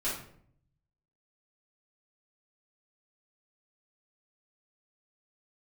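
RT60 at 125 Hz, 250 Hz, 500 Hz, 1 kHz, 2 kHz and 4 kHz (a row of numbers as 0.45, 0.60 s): 1.3, 0.80, 0.70, 0.55, 0.50, 0.40 s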